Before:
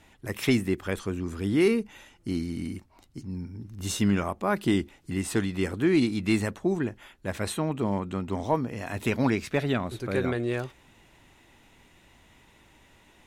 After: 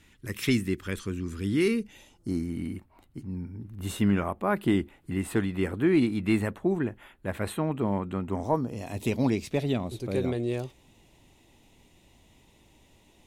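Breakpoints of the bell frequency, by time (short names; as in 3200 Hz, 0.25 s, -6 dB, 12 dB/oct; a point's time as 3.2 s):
bell -14 dB 1 oct
1.75 s 730 Hz
2.6 s 5700 Hz
8.2 s 5700 Hz
8.83 s 1500 Hz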